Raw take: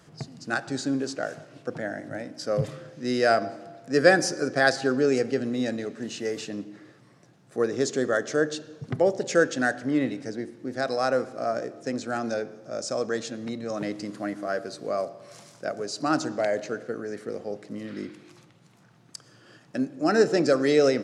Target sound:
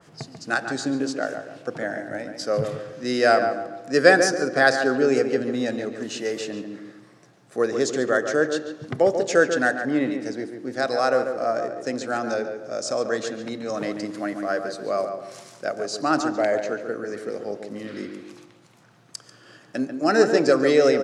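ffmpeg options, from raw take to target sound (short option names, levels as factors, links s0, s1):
-filter_complex "[0:a]lowshelf=f=250:g=-8,asplit=2[s0][s1];[s1]adelay=141,lowpass=f=2100:p=1,volume=0.447,asplit=2[s2][s3];[s3]adelay=141,lowpass=f=2100:p=1,volume=0.37,asplit=2[s4][s5];[s5]adelay=141,lowpass=f=2100:p=1,volume=0.37,asplit=2[s6][s7];[s7]adelay=141,lowpass=f=2100:p=1,volume=0.37[s8];[s0][s2][s4][s6][s8]amix=inputs=5:normalize=0,adynamicequalizer=threshold=0.00794:dfrequency=2400:dqfactor=0.7:tfrequency=2400:tqfactor=0.7:attack=5:release=100:ratio=0.375:range=2:mode=cutabove:tftype=highshelf,volume=1.68"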